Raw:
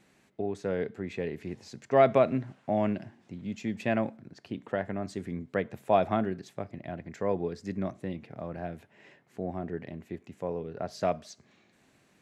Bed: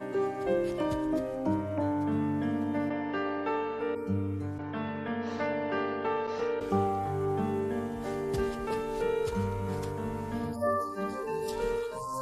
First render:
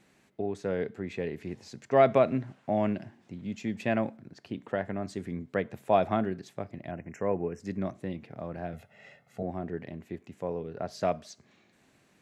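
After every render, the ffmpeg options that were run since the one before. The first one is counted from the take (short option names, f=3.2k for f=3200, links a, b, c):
-filter_complex "[0:a]asettb=1/sr,asplit=3[a][b][c];[a]atrim=end=6.914[d];[b]atrim=start=6.91:end=7.6,asetpts=PTS-STARTPTS,afade=t=in:d=0.004:c=qsin,afade=t=out:st=0.686:d=0.004:c=qsin,asuperstop=centerf=4000:order=20:qfactor=1.7[e];[c]atrim=start=7.596[f];[d][e]acrossfade=d=0.004:c1=hsin:c2=qsin[g];[g][f]acrossfade=d=0.004:c1=qsin:c2=hsin,asettb=1/sr,asplit=3[h][i][j];[h]atrim=end=8.734[k];[i]atrim=start=8.73:end=9.43,asetpts=PTS-STARTPTS,afade=t=in:d=0.004:c=qsin,afade=t=out:st=0.696:d=0.004:c=qsin,aecho=1:1:1.5:0.88,atrim=end_sample=30870[l];[j]atrim=start=9.426[m];[k][l]acrossfade=d=0.004:c1=hsin:c2=qsin[n];[n][m]acrossfade=d=0.004:c1=qsin:c2=hsin"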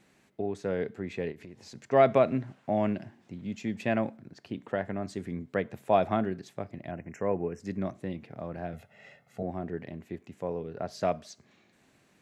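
-filter_complex "[0:a]asplit=3[a][b][c];[a]afade=t=out:st=1.31:d=0.02[d];[b]acompressor=threshold=-42dB:ratio=6:attack=3.2:release=140:knee=1:detection=peak,afade=t=in:st=1.31:d=0.02,afade=t=out:st=1.74:d=0.02[e];[c]afade=t=in:st=1.74:d=0.02[f];[d][e][f]amix=inputs=3:normalize=0"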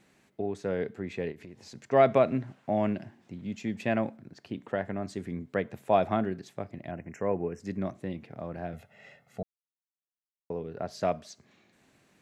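-filter_complex "[0:a]asplit=3[a][b][c];[a]atrim=end=9.43,asetpts=PTS-STARTPTS,afade=t=out:st=9.426:d=0.004:c=hsin[d];[b]atrim=start=9.43:end=10.5,asetpts=PTS-STARTPTS,volume=0[e];[c]atrim=start=10.5,asetpts=PTS-STARTPTS,afade=t=in:d=0.004:c=hsin[f];[d][e][f]concat=n=3:v=0:a=1"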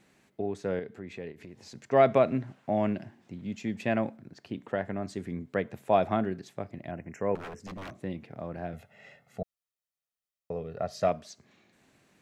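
-filter_complex "[0:a]asettb=1/sr,asplit=3[a][b][c];[a]atrim=end=0.794[d];[b]atrim=start=0.79:end=1.41,asetpts=PTS-STARTPTS,afade=t=in:d=0.004:c=qsin,afade=t=out:st=0.616:d=0.004:c=qsin,acompressor=threshold=-46dB:ratio=1.5:attack=3.2:release=140:knee=1:detection=peak[e];[c]atrim=start=1.406[f];[d][e]acrossfade=d=0.004:c1=hsin:c2=qsin[g];[g][f]acrossfade=d=0.004:c1=qsin:c2=hsin,asettb=1/sr,asplit=3[h][i][j];[h]atrim=end=7.354[k];[i]atrim=start=7.35:end=8.04,asetpts=PTS-STARTPTS,afade=t=in:d=0.004:c=qsin,afade=t=out:st=0.686:d=0.004:c=qsin,aeval=exprs='0.0178*(abs(mod(val(0)/0.0178+3,4)-2)-1)':c=same[l];[j]atrim=start=8.036[m];[k][l]acrossfade=d=0.004:c1=hsin:c2=qsin[n];[n][m]acrossfade=d=0.004:c1=qsin:c2=hsin,asettb=1/sr,asplit=3[o][p][q];[o]atrim=end=9.414[r];[p]atrim=start=9.41:end=11.08,asetpts=PTS-STARTPTS,afade=t=in:d=0.004:c=qsin,afade=t=out:st=1.666:d=0.004:c=qsin,aecho=1:1:1.6:0.53,atrim=end_sample=73647[s];[q]atrim=start=11.076[t];[r][s]acrossfade=d=0.004:c1=hsin:c2=qsin[u];[u][t]acrossfade=d=0.004:c1=qsin:c2=hsin"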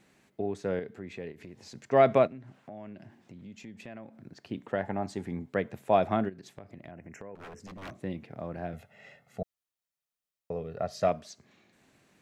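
-filter_complex "[0:a]asplit=3[a][b][c];[a]afade=t=out:st=2.26:d=0.02[d];[b]acompressor=threshold=-46dB:ratio=3:attack=3.2:release=140:knee=1:detection=peak,afade=t=in:st=2.26:d=0.02,afade=t=out:st=4.19:d=0.02[e];[c]afade=t=in:st=4.19:d=0.02[f];[d][e][f]amix=inputs=3:normalize=0,asettb=1/sr,asplit=3[g][h][i];[g]atrim=end=4.834[j];[h]atrim=start=4.83:end=5.5,asetpts=PTS-STARTPTS,afade=t=in:d=0.004:c=qsin,afade=t=out:st=0.666:d=0.004:c=qsin,equalizer=f=840:w=4.9:g=15[k];[i]atrim=start=5.496[l];[j][k]acrossfade=d=0.004:c1=hsin:c2=qsin[m];[m][l]acrossfade=d=0.004:c1=qsin:c2=hsin,asplit=3[n][o][p];[n]afade=t=out:st=6.28:d=0.02[q];[o]acompressor=threshold=-42dB:ratio=5:attack=3.2:release=140:knee=1:detection=peak,afade=t=in:st=6.28:d=0.02,afade=t=out:st=7.82:d=0.02[r];[p]afade=t=in:st=7.82:d=0.02[s];[q][r][s]amix=inputs=3:normalize=0"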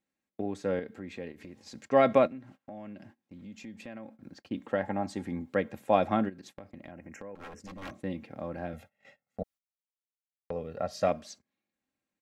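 -af "agate=range=-25dB:threshold=-51dB:ratio=16:detection=peak,aecho=1:1:3.7:0.47"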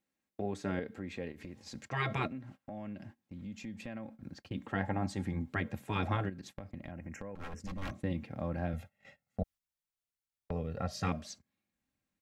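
-af "afftfilt=real='re*lt(hypot(re,im),0.178)':imag='im*lt(hypot(re,im),0.178)':win_size=1024:overlap=0.75,asubboost=boost=3:cutoff=180"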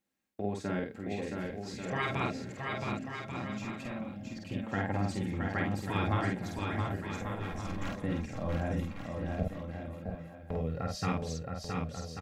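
-filter_complex "[0:a]asplit=2[a][b];[b]adelay=49,volume=-2.5dB[c];[a][c]amix=inputs=2:normalize=0,aecho=1:1:670|1139|1467|1697|1858:0.631|0.398|0.251|0.158|0.1"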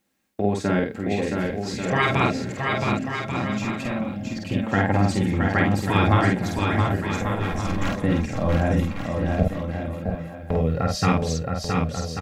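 -af "volume=12dB"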